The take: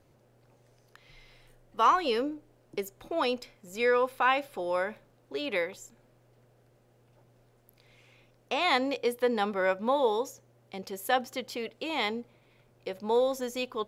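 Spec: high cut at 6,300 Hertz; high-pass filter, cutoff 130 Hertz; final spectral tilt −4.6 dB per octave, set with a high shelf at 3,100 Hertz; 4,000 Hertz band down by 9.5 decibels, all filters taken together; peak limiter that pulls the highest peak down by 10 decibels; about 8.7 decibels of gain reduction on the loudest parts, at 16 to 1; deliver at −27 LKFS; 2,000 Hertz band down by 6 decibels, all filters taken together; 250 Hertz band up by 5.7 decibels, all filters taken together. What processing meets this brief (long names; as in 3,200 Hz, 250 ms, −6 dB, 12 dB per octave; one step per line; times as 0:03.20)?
high-pass filter 130 Hz
low-pass filter 6,300 Hz
parametric band 250 Hz +7 dB
parametric band 2,000 Hz −5 dB
high-shelf EQ 3,100 Hz −3.5 dB
parametric band 4,000 Hz −7.5 dB
downward compressor 16 to 1, threshold −28 dBFS
level +10.5 dB
brickwall limiter −17.5 dBFS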